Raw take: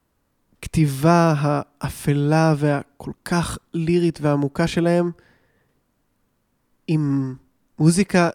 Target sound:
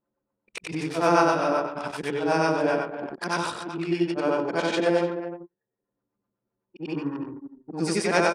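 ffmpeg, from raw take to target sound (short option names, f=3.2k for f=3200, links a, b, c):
-filter_complex "[0:a]afftfilt=real='re':imag='-im':win_size=8192:overlap=0.75,asplit=2[a][b];[b]adelay=24,volume=-13dB[c];[a][c]amix=inputs=2:normalize=0,asplit=2[d][e];[e]aecho=0:1:95|302:0.266|0.266[f];[d][f]amix=inputs=2:normalize=0,acrossover=split=540[g][h];[g]aeval=exprs='val(0)*(1-0.5/2+0.5/2*cos(2*PI*7.9*n/s))':c=same[i];[h]aeval=exprs='val(0)*(1-0.5/2-0.5/2*cos(2*PI*7.9*n/s))':c=same[j];[i][j]amix=inputs=2:normalize=0,asplit=2[k][l];[l]acompressor=mode=upward:threshold=-26dB:ratio=2.5,volume=-1dB[m];[k][m]amix=inputs=2:normalize=0,highpass=380,lowpass=7k,anlmdn=3.98"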